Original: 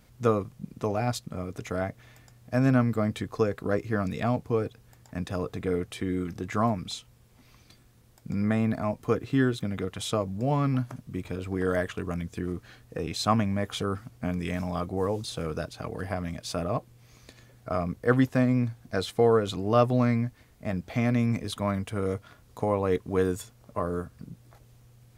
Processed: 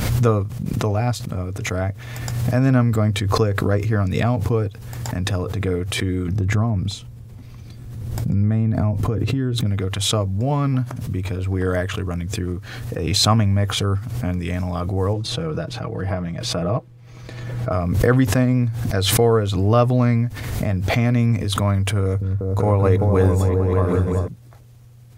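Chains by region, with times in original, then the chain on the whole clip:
0:06.28–0:09.66: low-shelf EQ 470 Hz +11.5 dB + downward compressor 4 to 1, threshold −26 dBFS
0:15.13–0:17.72: low-pass filter 2,300 Hz 6 dB per octave + comb filter 6.2 ms, depth 53%
0:22.02–0:24.28: notch filter 3,100 Hz, Q 7.2 + echo whose low-pass opens from repeat to repeat 193 ms, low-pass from 200 Hz, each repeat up 2 octaves, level 0 dB + one half of a high-frequency compander decoder only
whole clip: parametric band 100 Hz +11.5 dB 0.46 octaves; background raised ahead of every attack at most 34 dB per second; level +4 dB

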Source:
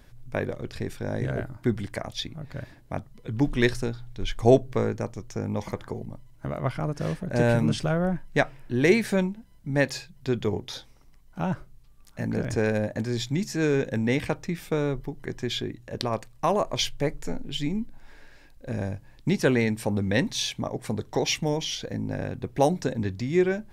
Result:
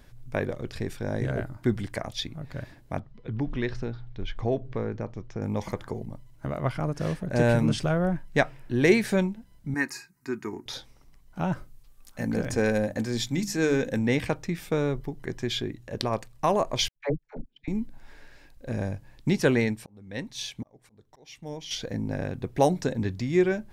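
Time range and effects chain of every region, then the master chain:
0:02.99–0:05.42: downward compressor 2 to 1, threshold −28 dBFS + high-frequency loss of the air 190 metres
0:09.74–0:10.66: high-pass filter 250 Hz + phaser with its sweep stopped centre 1,400 Hz, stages 4 + comb filter 3.2 ms, depth 43%
0:11.53–0:13.99: high-shelf EQ 6,900 Hz +6 dB + mains-hum notches 50/100/150/200/250/300 Hz + comb filter 3.9 ms, depth 30%
0:16.88–0:17.68: noise gate −26 dBFS, range −40 dB + high-frequency loss of the air 260 metres + all-pass dispersion lows, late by 80 ms, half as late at 540 Hz
0:19.48–0:21.71: volume swells 717 ms + expander for the loud parts, over −36 dBFS
whole clip: no processing

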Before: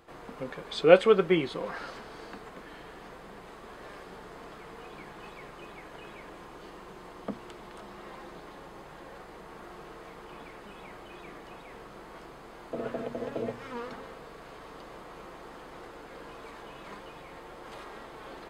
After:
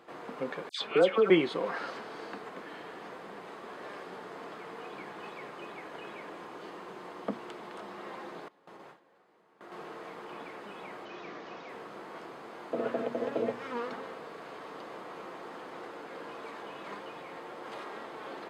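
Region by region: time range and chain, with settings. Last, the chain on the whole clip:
0:00.69–0:01.30: downward compressor 2.5 to 1, threshold −25 dBFS + all-pass dispersion lows, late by 121 ms, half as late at 1,800 Hz
0:08.48–0:09.72: noise gate with hold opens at −36 dBFS, closes at −43 dBFS + downward compressor 1.5 to 1, threshold −57 dBFS
0:11.05–0:11.69: linear delta modulator 32 kbit/s, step −53 dBFS + notch filter 870 Hz, Q 19
whole clip: high-pass filter 210 Hz 12 dB per octave; high-shelf EQ 6,100 Hz −9 dB; level +3 dB

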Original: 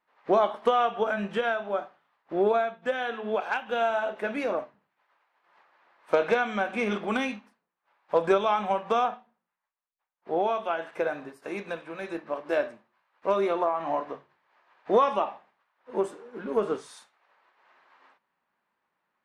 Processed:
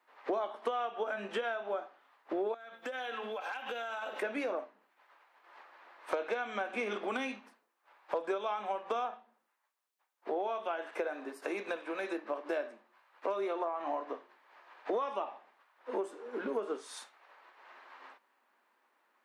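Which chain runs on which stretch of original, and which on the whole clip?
0:02.54–0:04.22: spectral tilt +2 dB per octave + comb filter 3.8 ms, depth 49% + downward compressor 16 to 1, threshold −39 dBFS
whole clip: Butterworth high-pass 250 Hz 36 dB per octave; downward compressor 4 to 1, threshold −41 dBFS; level +6 dB

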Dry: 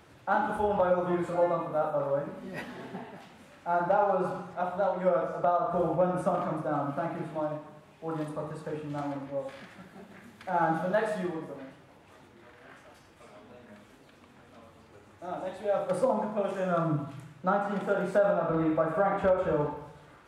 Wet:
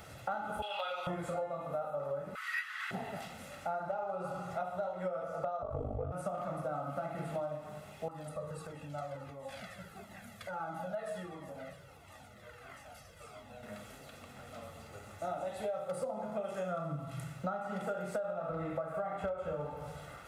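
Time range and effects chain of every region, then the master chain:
0:00.62–0:01.07: high-pass filter 1,100 Hz + flat-topped bell 3,300 Hz +15 dB 1.1 octaves
0:02.35–0:02.91: Butterworth high-pass 1,100 Hz 48 dB per octave + parametric band 1,800 Hz +13.5 dB 2.1 octaves
0:05.62–0:06.12: spectral tilt −3 dB per octave + ring modulation 25 Hz + frequency shifter −69 Hz
0:08.08–0:13.63: downward compressor 2.5 to 1, threshold −41 dBFS + flanger whose copies keep moving one way falling 1.5 Hz
whole clip: high-shelf EQ 6,900 Hz +9 dB; comb filter 1.5 ms, depth 57%; downward compressor 10 to 1, threshold −38 dBFS; level +3.5 dB

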